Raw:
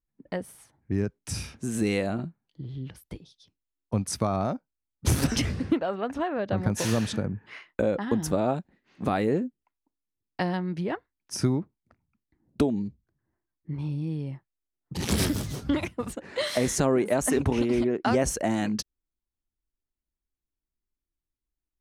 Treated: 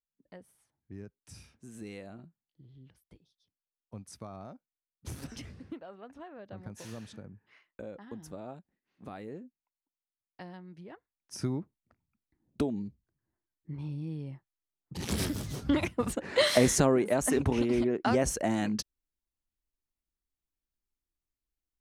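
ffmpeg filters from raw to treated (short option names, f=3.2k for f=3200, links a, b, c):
-af "volume=4.5dB,afade=t=in:st=10.94:d=0.67:silence=0.266073,afade=t=in:st=15.37:d=1.03:silence=0.281838,afade=t=out:st=16.4:d=0.59:silence=0.421697"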